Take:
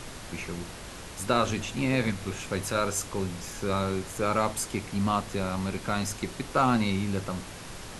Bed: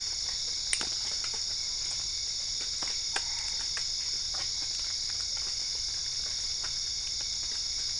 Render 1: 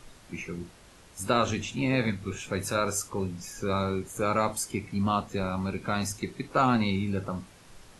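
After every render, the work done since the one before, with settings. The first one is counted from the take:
noise reduction from a noise print 12 dB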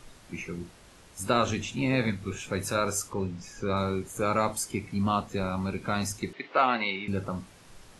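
0:03.13–0:03.77: high-frequency loss of the air 72 metres
0:06.33–0:07.08: loudspeaker in its box 400–4,500 Hz, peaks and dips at 660 Hz +3 dB, 2,000 Hz +9 dB, 3,000 Hz +6 dB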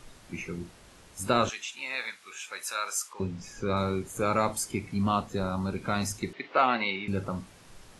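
0:01.49–0:03.20: high-pass filter 1,200 Hz
0:05.31–0:05.76: parametric band 2,300 Hz −13 dB 0.28 octaves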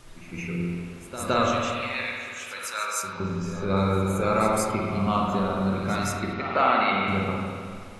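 backwards echo 166 ms −13 dB
spring reverb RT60 2.1 s, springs 46/52 ms, chirp 40 ms, DRR −2.5 dB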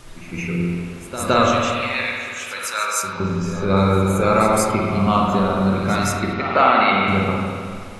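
level +7 dB
brickwall limiter −3 dBFS, peak gain reduction 2 dB

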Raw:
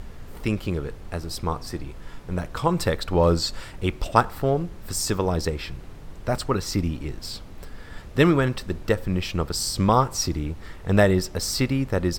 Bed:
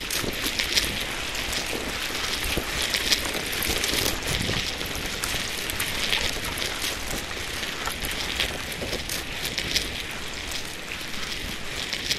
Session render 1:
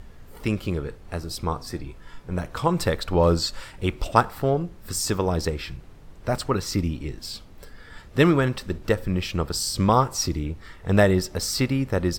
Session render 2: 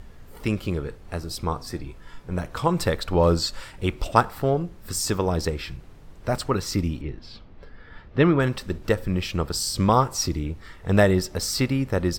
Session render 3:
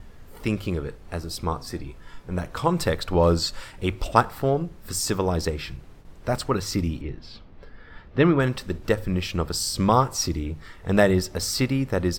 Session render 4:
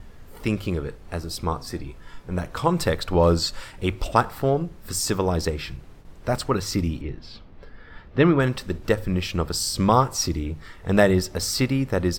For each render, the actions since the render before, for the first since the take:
noise reduction from a noise print 6 dB
0:07.01–0:08.40: high-frequency loss of the air 250 metres
noise gate with hold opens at −37 dBFS; mains-hum notches 50/100/150 Hz
level +1 dB; brickwall limiter −3 dBFS, peak gain reduction 3 dB

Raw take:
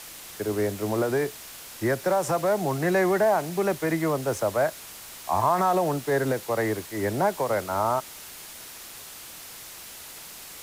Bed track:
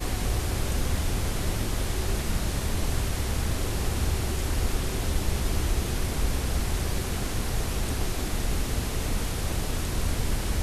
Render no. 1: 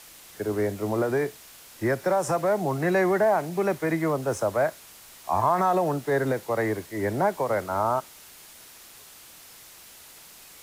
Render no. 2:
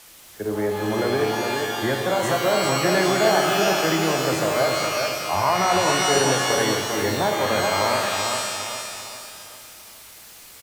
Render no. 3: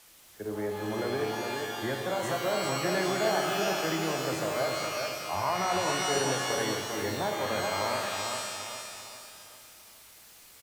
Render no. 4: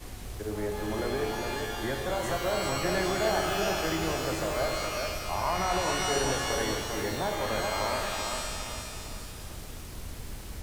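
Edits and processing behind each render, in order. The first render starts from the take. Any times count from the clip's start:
noise reduction from a noise print 6 dB
repeating echo 401 ms, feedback 42%, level −5 dB; reverb with rising layers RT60 1.5 s, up +12 semitones, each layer −2 dB, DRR 4 dB
level −9 dB
mix in bed track −13.5 dB

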